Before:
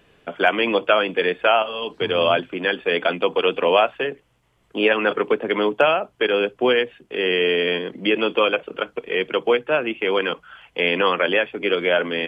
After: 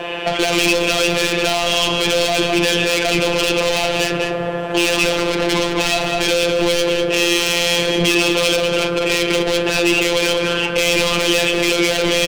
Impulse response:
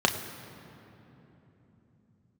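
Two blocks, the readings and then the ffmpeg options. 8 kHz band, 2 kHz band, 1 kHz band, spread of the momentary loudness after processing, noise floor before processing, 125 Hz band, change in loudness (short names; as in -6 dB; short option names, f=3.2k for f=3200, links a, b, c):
n/a, +4.5 dB, +0.5 dB, 3 LU, -63 dBFS, +12.5 dB, +4.5 dB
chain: -filter_complex "[0:a]asplit=2[a][b];[b]highpass=f=720:p=1,volume=31dB,asoftclip=type=tanh:threshold=-2dB[c];[a][c]amix=inputs=2:normalize=0,lowpass=f=1.4k:p=1,volume=-6dB,aecho=1:1:203:0.266,asplit=2[d][e];[1:a]atrim=start_sample=2205,asetrate=38367,aresample=44100[f];[e][f]afir=irnorm=-1:irlink=0,volume=-18.5dB[g];[d][g]amix=inputs=2:normalize=0,apsyclip=15dB,equalizer=f=230:w=2.1:g=-10.5,acontrast=39,afftfilt=real='hypot(re,im)*cos(PI*b)':imag='0':win_size=1024:overlap=0.75,adynamicequalizer=threshold=0.0631:dfrequency=2700:dqfactor=2.3:tfrequency=2700:tqfactor=2.3:attack=5:release=100:ratio=0.375:range=1.5:mode=boostabove:tftype=bell,acrossover=split=360|3000[h][i][j];[i]acompressor=threshold=-14dB:ratio=6[k];[h][k][j]amix=inputs=3:normalize=0,volume=-6dB"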